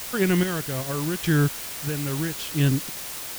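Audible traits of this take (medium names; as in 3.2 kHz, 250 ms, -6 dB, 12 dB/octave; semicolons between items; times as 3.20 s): chopped level 0.81 Hz, depth 60%, duty 35%; a quantiser's noise floor 6-bit, dither triangular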